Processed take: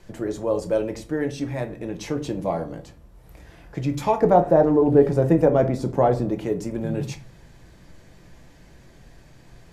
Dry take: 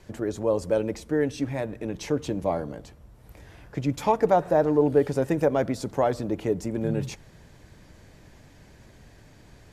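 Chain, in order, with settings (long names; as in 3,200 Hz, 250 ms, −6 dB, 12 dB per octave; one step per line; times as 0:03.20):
0:04.21–0:06.29: tilt shelving filter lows +5.5 dB, about 1,300 Hz
rectangular room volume 190 cubic metres, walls furnished, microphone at 0.79 metres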